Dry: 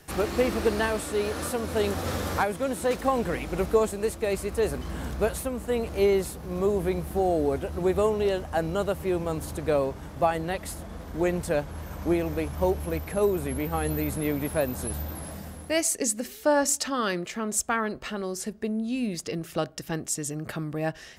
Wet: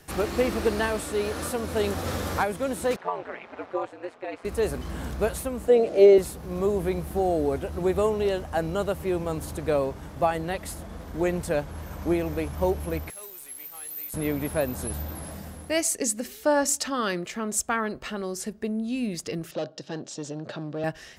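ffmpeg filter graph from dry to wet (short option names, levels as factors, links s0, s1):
-filter_complex "[0:a]asettb=1/sr,asplit=3[s0][s1][s2];[s0]atrim=end=2.964[s3];[s1]atrim=start=2.96:end=4.45,asetpts=PTS-STARTPTS,afade=t=in:d=0.004:c=qsin,afade=t=out:st=1.486:d=0.004:c=qsin,highpass=580,lowpass=2300,aeval=exprs='val(0)*sin(2*PI*88*n/s)':c=same[s4];[s2]atrim=start=4.446[s5];[s3][s4]acrossfade=d=0.004:c1=hsin:c2=qsin[s6];[s6][s5]acrossfade=d=0.004:c1=qsin:c2=hsin,asettb=1/sr,asplit=3[s7][s8][s9];[s7]atrim=end=5.684[s10];[s8]atrim=start=5.68:end=6.18,asetpts=PTS-STARTPTS,afade=t=in:d=0.004:c=qsin,afade=t=out:st=0.496:d=0.004:c=qsin,highpass=300,lowpass=7600,lowshelf=f=770:t=q:w=3:g=6.5[s11];[s9]atrim=start=6.176[s12];[s10][s11]acrossfade=d=0.004:c1=hsin:c2=qsin[s13];[s13][s12]acrossfade=d=0.004:c1=qsin:c2=hsin,asettb=1/sr,asplit=3[s14][s15][s16];[s14]atrim=end=13.104[s17];[s15]atrim=start=13.1:end=14.14,asetpts=PTS-STARTPTS,afade=t=in:d=0.004:c=qsin,afade=t=out:st=1.036:d=0.004:c=qsin,aeval=exprs='if(lt(val(0),0),0.708*val(0),val(0))':c=same,aderivative,acrusher=bits=9:dc=4:mix=0:aa=0.000001[s18];[s16]atrim=start=14.136[s19];[s17][s18]acrossfade=d=0.004:c1=hsin:c2=qsin[s20];[s20][s19]acrossfade=d=0.004:c1=qsin:c2=hsin,asettb=1/sr,asplit=3[s21][s22][s23];[s21]atrim=end=19.514[s24];[s22]atrim=start=19.51:end=20.84,asetpts=PTS-STARTPTS,afade=t=in:d=0.004:c=qsin,afade=t=out:st=1.326:d=0.004:c=qsin,asoftclip=type=hard:threshold=0.0376,highpass=f=130:w=0.5412,highpass=f=130:w=1.3066,equalizer=f=180:t=q:w=4:g=-4,equalizer=f=560:t=q:w=4:g=8,equalizer=f=1200:t=q:w=4:g=-4,equalizer=f=2100:t=q:w=4:g=-10,equalizer=f=3900:t=q:w=4:g=4,lowpass=f=6000:w=0.5412,lowpass=f=6000:w=1.3066[s25];[s23]atrim=start=20.836[s26];[s24][s25]acrossfade=d=0.004:c1=hsin:c2=qsin[s27];[s27][s26]acrossfade=d=0.004:c1=qsin:c2=hsin"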